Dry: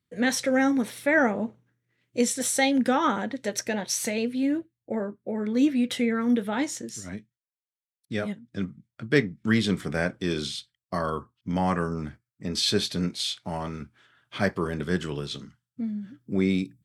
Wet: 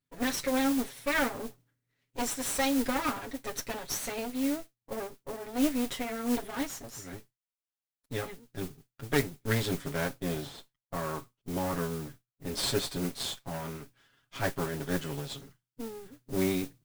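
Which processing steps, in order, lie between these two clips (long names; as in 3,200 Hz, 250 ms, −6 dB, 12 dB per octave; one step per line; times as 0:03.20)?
lower of the sound and its delayed copy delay 7.3 ms
0:10.14–0:12.47: high-shelf EQ 2,600 Hz −11.5 dB
noise that follows the level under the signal 13 dB
level −4.5 dB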